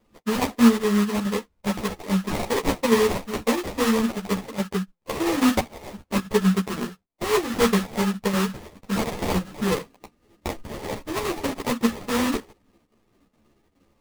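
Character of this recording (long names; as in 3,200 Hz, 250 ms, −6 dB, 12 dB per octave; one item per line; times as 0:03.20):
aliases and images of a low sample rate 1,500 Hz, jitter 20%
chopped level 2.4 Hz, depth 60%, duty 85%
a shimmering, thickened sound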